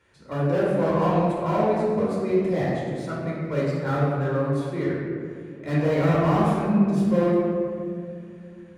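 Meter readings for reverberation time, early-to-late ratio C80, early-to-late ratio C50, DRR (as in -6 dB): 2.4 s, 0.5 dB, -1.5 dB, -7.0 dB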